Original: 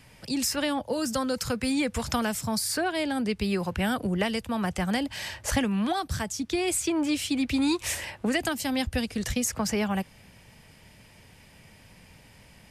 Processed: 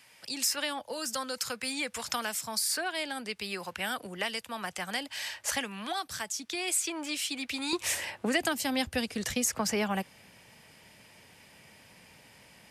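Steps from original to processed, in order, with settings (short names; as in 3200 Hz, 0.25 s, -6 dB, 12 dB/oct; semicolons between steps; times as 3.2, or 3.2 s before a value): HPF 1300 Hz 6 dB/oct, from 7.73 s 300 Hz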